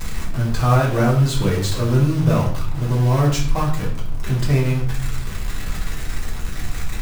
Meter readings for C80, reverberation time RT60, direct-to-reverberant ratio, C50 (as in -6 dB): 10.0 dB, 0.55 s, -5.5 dB, 6.5 dB